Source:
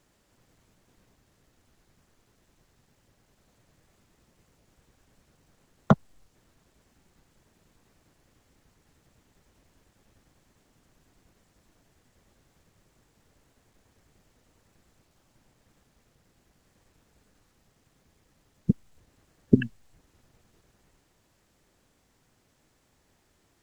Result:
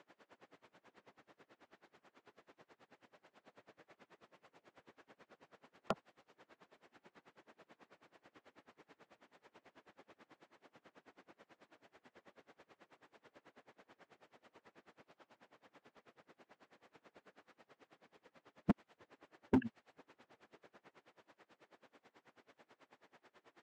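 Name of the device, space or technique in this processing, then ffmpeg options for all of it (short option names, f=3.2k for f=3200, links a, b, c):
helicopter radio: -af "highpass=370,lowpass=2.6k,aeval=exprs='val(0)*pow(10,-27*(0.5-0.5*cos(2*PI*9.2*n/s))/20)':c=same,asoftclip=type=hard:threshold=-36.5dB,volume=11.5dB"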